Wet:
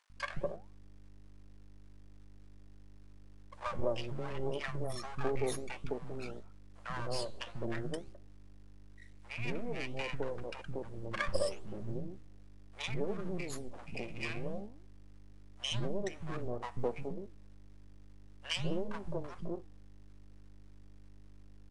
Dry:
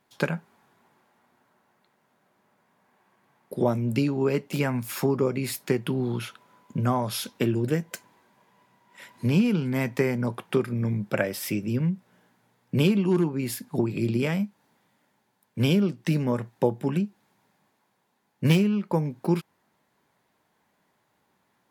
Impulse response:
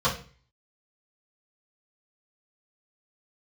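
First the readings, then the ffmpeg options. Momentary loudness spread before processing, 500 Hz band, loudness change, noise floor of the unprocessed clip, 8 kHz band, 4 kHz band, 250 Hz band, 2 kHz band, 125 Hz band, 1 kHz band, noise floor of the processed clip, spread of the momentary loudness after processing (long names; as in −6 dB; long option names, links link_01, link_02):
8 LU, −10.5 dB, −13.5 dB, −72 dBFS, −10.5 dB, −6.0 dB, −18.5 dB, −8.0 dB, −16.0 dB, −8.5 dB, −53 dBFS, 15 LU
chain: -filter_complex "[0:a]afftfilt=real='re*pow(10,12/40*sin(2*PI*(1.3*log(max(b,1)*sr/1024/100)/log(2)-(0.27)*(pts-256)/sr)))':imag='im*pow(10,12/40*sin(2*PI*(1.3*log(max(b,1)*sr/1024/100)/log(2)-(0.27)*(pts-256)/sr)))':win_size=1024:overlap=0.75,afftdn=noise_reduction=34:noise_floor=-32,bass=frequency=250:gain=-7,treble=frequency=4000:gain=6,aecho=1:1:1.7:0.58,aeval=exprs='val(0)+0.00631*(sin(2*PI*50*n/s)+sin(2*PI*2*50*n/s)/2+sin(2*PI*3*50*n/s)/3+sin(2*PI*4*50*n/s)/4+sin(2*PI*5*50*n/s)/5)':channel_layout=same,aeval=exprs='max(val(0),0)':channel_layout=same,flanger=delay=7.7:depth=7.9:regen=85:speed=1.7:shape=sinusoidal,acrusher=bits=8:dc=4:mix=0:aa=0.000001,acrossover=split=210|840[link_01][link_02][link_03];[link_01]adelay=140[link_04];[link_02]adelay=210[link_05];[link_04][link_05][link_03]amix=inputs=3:normalize=0,aresample=22050,aresample=44100,volume=-1.5dB"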